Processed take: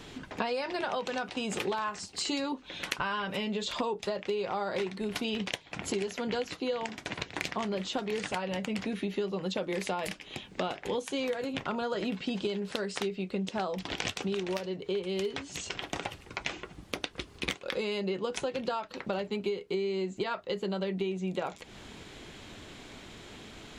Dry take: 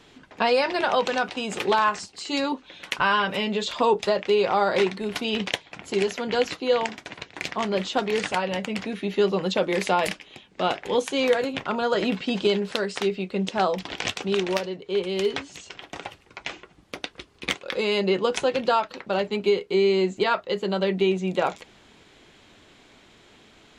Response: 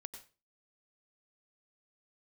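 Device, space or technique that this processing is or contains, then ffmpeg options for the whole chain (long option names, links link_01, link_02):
ASMR close-microphone chain: -af "lowshelf=frequency=240:gain=6,acompressor=threshold=-35dB:ratio=6,highshelf=frequency=8000:gain=5.5,volume=4dB"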